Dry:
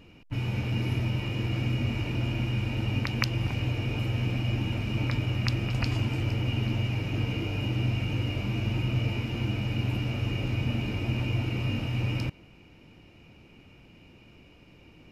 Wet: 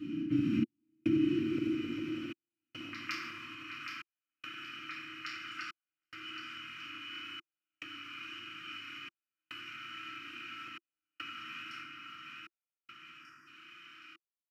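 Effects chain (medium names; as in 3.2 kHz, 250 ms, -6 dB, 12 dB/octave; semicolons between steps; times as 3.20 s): tilt EQ -2 dB/octave; feedback delay 802 ms, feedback 28%, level -7.5 dB; time-frequency box 13.75–14.03 s, 1.9–4.4 kHz -27 dB; FDN reverb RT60 1.5 s, low-frequency decay 1.35×, high-frequency decay 0.45×, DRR -8 dB; speed mistake 24 fps film run at 25 fps; trance gate "xxx..xxx" 71 bpm -60 dB; Chebyshev band-stop 340–1200 Hz, order 4; compression 2:1, threshold -35 dBFS, peak gain reduction 15 dB; high-pass sweep 250 Hz -> 1.3 kHz, 0.66–4.10 s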